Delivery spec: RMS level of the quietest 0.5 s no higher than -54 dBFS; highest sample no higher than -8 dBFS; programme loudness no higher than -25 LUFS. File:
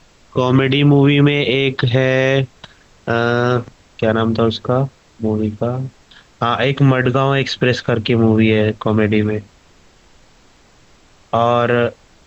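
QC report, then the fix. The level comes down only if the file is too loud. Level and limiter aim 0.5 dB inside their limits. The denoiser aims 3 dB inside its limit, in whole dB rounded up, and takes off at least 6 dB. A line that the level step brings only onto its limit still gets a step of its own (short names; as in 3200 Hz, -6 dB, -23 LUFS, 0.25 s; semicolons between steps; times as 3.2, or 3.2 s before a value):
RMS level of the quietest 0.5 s -49 dBFS: fail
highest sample -3.5 dBFS: fail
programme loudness -16.0 LUFS: fail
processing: gain -9.5 dB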